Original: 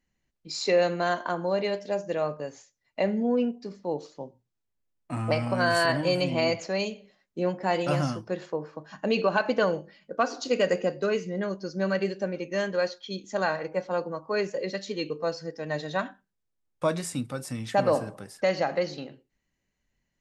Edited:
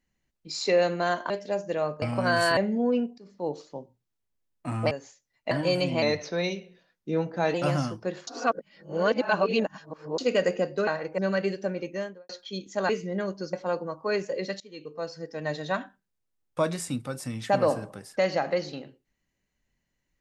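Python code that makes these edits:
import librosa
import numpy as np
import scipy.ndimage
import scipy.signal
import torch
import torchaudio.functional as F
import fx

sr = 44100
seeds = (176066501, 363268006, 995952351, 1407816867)

y = fx.studio_fade_out(x, sr, start_s=12.39, length_s=0.48)
y = fx.edit(y, sr, fx.cut(start_s=1.3, length_s=0.4),
    fx.swap(start_s=2.42, length_s=0.6, other_s=5.36, other_length_s=0.55),
    fx.fade_in_from(start_s=3.63, length_s=0.3, floor_db=-18.5),
    fx.speed_span(start_s=6.42, length_s=1.37, speed=0.9),
    fx.reverse_span(start_s=8.52, length_s=1.91),
    fx.swap(start_s=11.12, length_s=0.64, other_s=13.47, other_length_s=0.31),
    fx.fade_in_from(start_s=14.85, length_s=0.8, floor_db=-22.0), tone=tone)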